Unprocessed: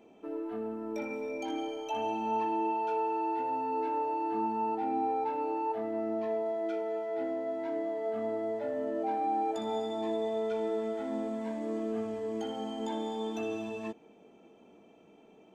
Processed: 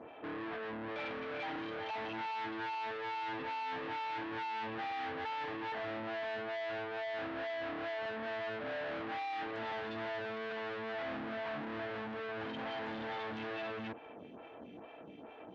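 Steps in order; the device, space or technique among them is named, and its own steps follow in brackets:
vibe pedal into a guitar amplifier (phaser with staggered stages 2.3 Hz; tube saturation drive 53 dB, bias 0.6; loudspeaker in its box 100–3,600 Hz, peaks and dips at 200 Hz −6 dB, 390 Hz −8 dB, 1,700 Hz +5 dB)
level +15 dB

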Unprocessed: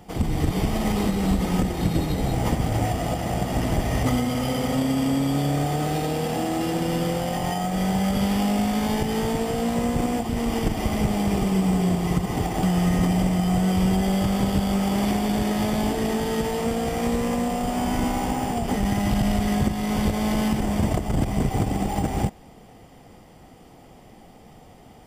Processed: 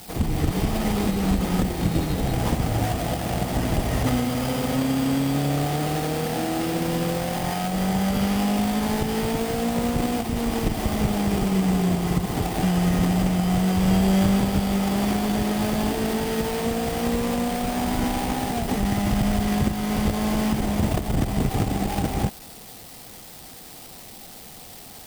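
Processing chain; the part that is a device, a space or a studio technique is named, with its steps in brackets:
0:13.79–0:14.40: double-tracking delay 36 ms −4 dB
budget class-D amplifier (gap after every zero crossing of 0.23 ms; spike at every zero crossing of −24 dBFS)

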